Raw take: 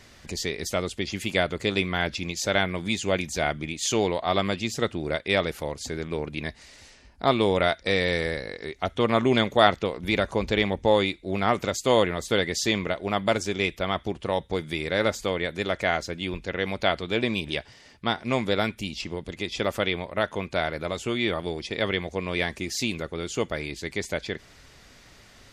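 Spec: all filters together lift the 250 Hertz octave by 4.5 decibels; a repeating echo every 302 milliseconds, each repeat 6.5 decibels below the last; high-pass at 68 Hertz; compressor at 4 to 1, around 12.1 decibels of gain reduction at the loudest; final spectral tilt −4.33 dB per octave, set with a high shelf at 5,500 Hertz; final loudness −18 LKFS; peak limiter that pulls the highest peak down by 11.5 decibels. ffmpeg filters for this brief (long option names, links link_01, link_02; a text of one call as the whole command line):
ffmpeg -i in.wav -af "highpass=68,equalizer=frequency=250:width_type=o:gain=6,highshelf=frequency=5500:gain=-4,acompressor=threshold=-28dB:ratio=4,alimiter=limit=-24dB:level=0:latency=1,aecho=1:1:302|604|906|1208|1510|1812:0.473|0.222|0.105|0.0491|0.0231|0.0109,volume=17.5dB" out.wav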